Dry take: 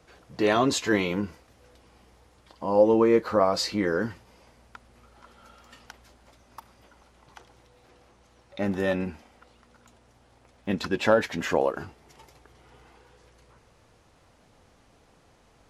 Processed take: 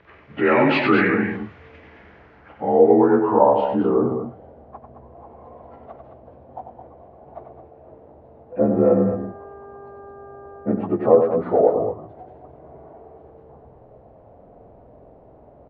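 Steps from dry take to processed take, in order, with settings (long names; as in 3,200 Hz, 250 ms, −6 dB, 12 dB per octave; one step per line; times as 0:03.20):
partials spread apart or drawn together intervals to 85%
in parallel at −2 dB: downward compressor, threshold −34 dBFS, peak gain reduction 18 dB
0:08.68–0:10.77: on the sum: hum with harmonics 400 Hz, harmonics 4, −47 dBFS −1 dB per octave
on a send: loudspeakers that aren't time-aligned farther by 32 metres −7 dB, 74 metres −9 dB
on the sum: low-pass filter sweep 2,100 Hz → 670 Hz, 0:01.92–0:04.14
automatic gain control gain up to 5.5 dB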